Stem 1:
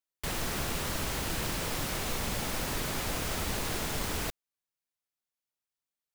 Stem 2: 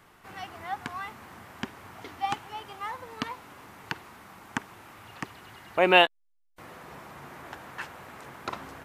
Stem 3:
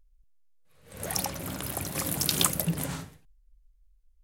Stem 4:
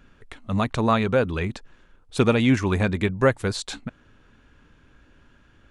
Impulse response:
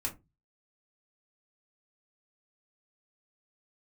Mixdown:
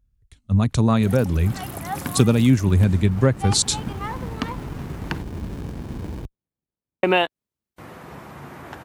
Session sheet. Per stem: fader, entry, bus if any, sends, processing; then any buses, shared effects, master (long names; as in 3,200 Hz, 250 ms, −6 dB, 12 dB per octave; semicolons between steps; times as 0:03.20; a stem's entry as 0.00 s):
−0.5 dB, 1.95 s, no send, windowed peak hold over 65 samples
+2.5 dB, 1.20 s, muted 0:05.22–0:07.03, no send, no processing
−4.0 dB, 0.00 s, no send, brickwall limiter −17 dBFS, peak gain reduction 11 dB
−1.5 dB, 0.00 s, no send, bass and treble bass +7 dB, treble +12 dB; multiband upward and downward expander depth 100%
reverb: not used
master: high-pass filter 49 Hz; low-shelf EQ 420 Hz +8.5 dB; downward compressor 3 to 1, threshold −15 dBFS, peak gain reduction 11 dB